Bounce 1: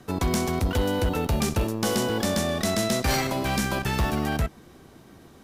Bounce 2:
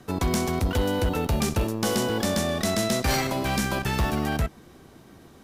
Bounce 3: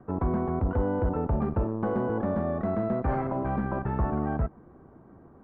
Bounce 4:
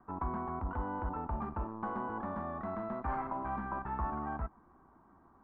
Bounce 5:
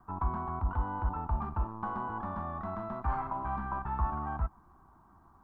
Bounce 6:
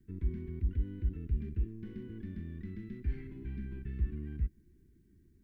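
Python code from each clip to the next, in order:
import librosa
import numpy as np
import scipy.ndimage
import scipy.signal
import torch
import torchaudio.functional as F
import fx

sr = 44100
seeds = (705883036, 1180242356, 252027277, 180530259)

y1 = x
y2 = scipy.signal.sosfilt(scipy.signal.butter(4, 1300.0, 'lowpass', fs=sr, output='sos'), y1)
y2 = F.gain(torch.from_numpy(y2), -2.0).numpy()
y3 = fx.graphic_eq_10(y2, sr, hz=(125, 500, 1000), db=(-11, -11, 10))
y3 = F.gain(torch.from_numpy(y3), -7.5).numpy()
y4 = fx.graphic_eq(y3, sr, hz=(250, 500, 2000), db=(-8, -11, -9))
y4 = F.gain(torch.from_numpy(y4), 7.5).numpy()
y5 = scipy.signal.sosfilt(scipy.signal.ellip(3, 1.0, 40, [400.0, 2000.0], 'bandstop', fs=sr, output='sos'), y4)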